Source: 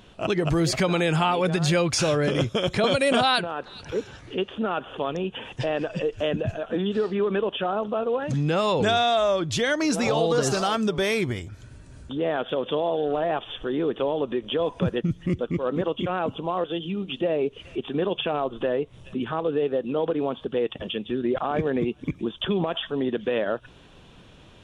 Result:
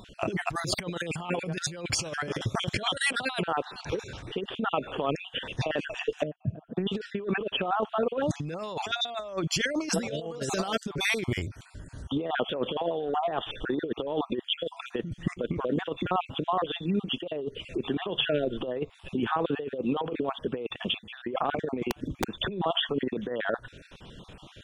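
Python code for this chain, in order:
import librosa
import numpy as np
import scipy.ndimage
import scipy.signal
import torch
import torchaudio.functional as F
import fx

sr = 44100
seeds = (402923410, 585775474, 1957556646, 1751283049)

y = fx.spec_dropout(x, sr, seeds[0], share_pct=36)
y = fx.bandpass_q(y, sr, hz=170.0, q=2.0, at=(6.23, 6.77))
y = fx.over_compress(y, sr, threshold_db=-28.0, ratio=-0.5)
y = fx.overflow_wrap(y, sr, gain_db=19.0, at=(21.89, 22.33))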